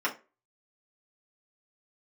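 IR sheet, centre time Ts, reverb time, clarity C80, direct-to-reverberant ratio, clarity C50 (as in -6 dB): 12 ms, 0.30 s, 21.5 dB, -5.0 dB, 14.0 dB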